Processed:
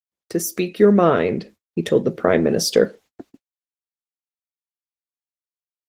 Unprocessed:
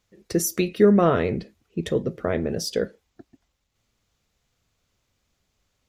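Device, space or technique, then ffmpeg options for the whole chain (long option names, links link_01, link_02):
video call: -af "highpass=170,dynaudnorm=framelen=200:gausssize=9:maxgain=12dB,agate=range=-50dB:threshold=-44dB:ratio=16:detection=peak,volume=1dB" -ar 48000 -c:a libopus -b:a 20k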